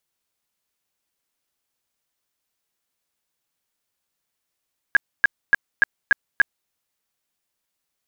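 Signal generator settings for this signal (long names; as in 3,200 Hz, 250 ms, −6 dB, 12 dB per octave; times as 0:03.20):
tone bursts 1,640 Hz, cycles 27, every 0.29 s, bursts 6, −9.5 dBFS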